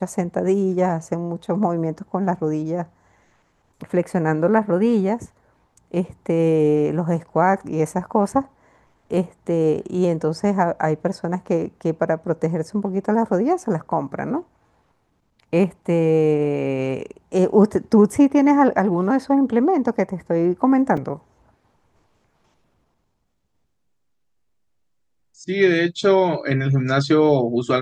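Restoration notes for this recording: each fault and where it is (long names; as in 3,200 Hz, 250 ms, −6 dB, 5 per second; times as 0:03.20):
0:20.97: drop-out 3.8 ms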